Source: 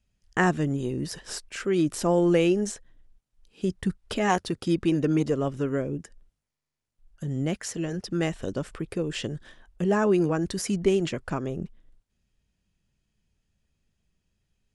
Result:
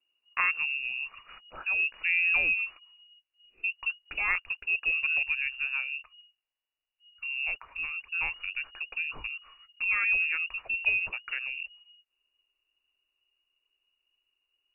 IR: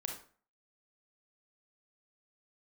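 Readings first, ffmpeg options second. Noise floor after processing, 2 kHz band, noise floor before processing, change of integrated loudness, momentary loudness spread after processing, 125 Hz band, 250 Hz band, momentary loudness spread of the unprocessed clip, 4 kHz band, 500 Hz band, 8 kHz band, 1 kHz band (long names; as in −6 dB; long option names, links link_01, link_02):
below −85 dBFS, +9.5 dB, −83 dBFS, −1.5 dB, 12 LU, below −30 dB, below −35 dB, 12 LU, −2.5 dB, −29.0 dB, below −40 dB, −9.5 dB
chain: -af "lowpass=frequency=2500:width_type=q:width=0.5098,lowpass=frequency=2500:width_type=q:width=0.6013,lowpass=frequency=2500:width_type=q:width=0.9,lowpass=frequency=2500:width_type=q:width=2.563,afreqshift=-2900,asubboost=boost=9:cutoff=54,volume=-5dB"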